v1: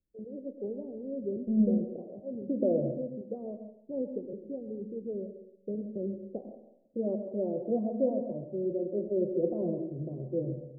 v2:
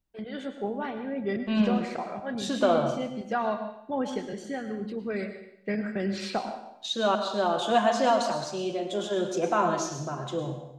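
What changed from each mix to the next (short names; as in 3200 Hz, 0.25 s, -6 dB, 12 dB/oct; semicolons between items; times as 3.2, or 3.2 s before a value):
first voice: add low shelf 250 Hz +9 dB; master: remove Chebyshev low-pass 550 Hz, order 5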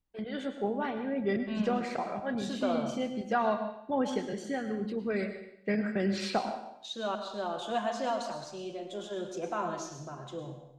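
second voice -9.0 dB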